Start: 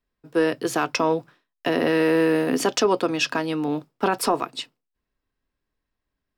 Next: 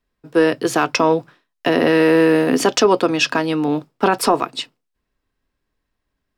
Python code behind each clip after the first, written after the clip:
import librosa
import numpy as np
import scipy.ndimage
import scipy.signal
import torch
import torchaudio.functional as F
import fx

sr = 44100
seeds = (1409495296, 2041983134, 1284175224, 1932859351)

y = fx.high_shelf(x, sr, hz=12000.0, db=-6.0)
y = F.gain(torch.from_numpy(y), 6.0).numpy()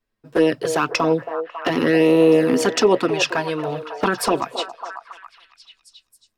y = fx.env_flanger(x, sr, rest_ms=9.2, full_db=-9.0)
y = fx.echo_stepped(y, sr, ms=274, hz=580.0, octaves=0.7, feedback_pct=70, wet_db=-6)